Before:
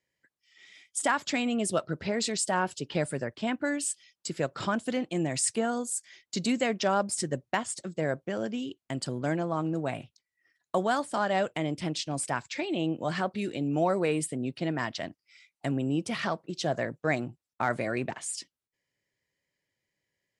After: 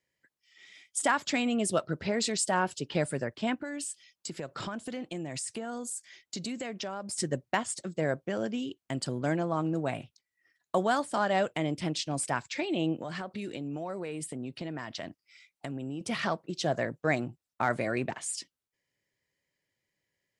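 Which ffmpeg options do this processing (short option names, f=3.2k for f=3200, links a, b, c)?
-filter_complex "[0:a]asettb=1/sr,asplit=3[a][b][c];[a]atrim=end=3.544[d];[b]atrim=start=3.54:end=7.18,asetpts=PTS-STARTPTS,afade=t=in:d=0.004:c=qsin,afade=t=out:st=3.636:d=0.004:c=qsin,acompressor=threshold=-33dB:ratio=6:attack=3.2:release=140:knee=1:detection=peak[e];[c]atrim=start=7.176[f];[d][e]acrossfade=d=0.004:c1=hsin:c2=qsin[g];[g][f]acrossfade=d=0.004:c1=qsin:c2=hsin,asettb=1/sr,asplit=3[h][i][j];[h]atrim=end=13.014[k];[i]atrim=start=13.01:end=16.01,asetpts=PTS-STARTPTS,afade=t=in:d=0.004:c=qsin,afade=t=out:st=2.996:d=0.004:c=qsin,acompressor=threshold=-33dB:ratio=6:attack=3.2:release=140:knee=1:detection=peak[l];[j]atrim=start=16.006[m];[k][l]acrossfade=d=0.004:c1=hsin:c2=qsin[n];[n][m]acrossfade=d=0.004:c1=qsin:c2=hsin"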